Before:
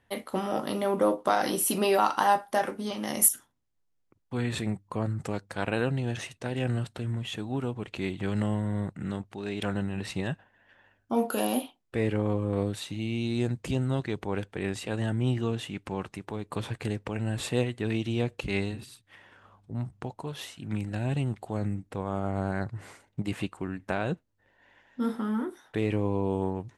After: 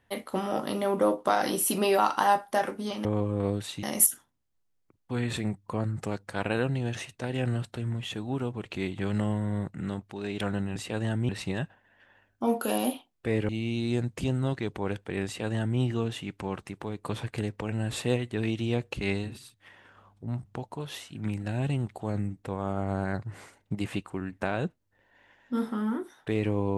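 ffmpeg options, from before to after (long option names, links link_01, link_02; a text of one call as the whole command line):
ffmpeg -i in.wav -filter_complex "[0:a]asplit=6[link_01][link_02][link_03][link_04][link_05][link_06];[link_01]atrim=end=3.052[link_07];[link_02]atrim=start=12.178:end=12.962[link_08];[link_03]atrim=start=3.048:end=9.982[link_09];[link_04]atrim=start=14.728:end=15.262[link_10];[link_05]atrim=start=9.978:end=12.182[link_11];[link_06]atrim=start=12.958[link_12];[link_07][link_08]acrossfade=duration=0.004:curve1=hsin:curve2=hsin[link_13];[link_13][link_09]acrossfade=duration=0.004:curve1=hsin:curve2=hsin[link_14];[link_14][link_10]acrossfade=duration=0.004:curve1=hsin:curve2=hsin[link_15];[link_15][link_11]acrossfade=duration=0.004:curve1=hsin:curve2=hsin[link_16];[link_16][link_12]acrossfade=duration=0.004:curve1=hsin:curve2=hsin" out.wav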